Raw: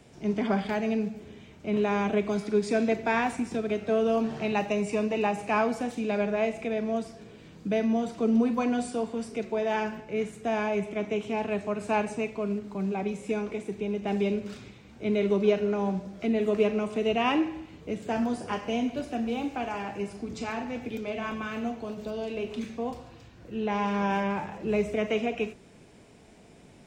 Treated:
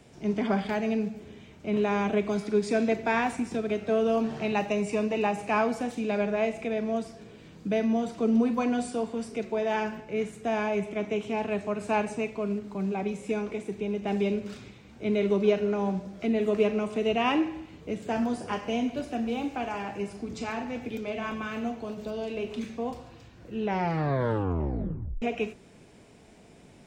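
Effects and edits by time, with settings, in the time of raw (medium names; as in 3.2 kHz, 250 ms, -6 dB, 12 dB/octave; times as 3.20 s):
23.63 s: tape stop 1.59 s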